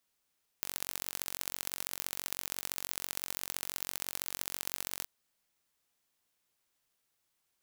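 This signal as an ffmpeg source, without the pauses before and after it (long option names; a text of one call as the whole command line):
ffmpeg -f lavfi -i "aevalsrc='0.447*eq(mod(n,959),0)*(0.5+0.5*eq(mod(n,2877),0))':duration=4.43:sample_rate=44100" out.wav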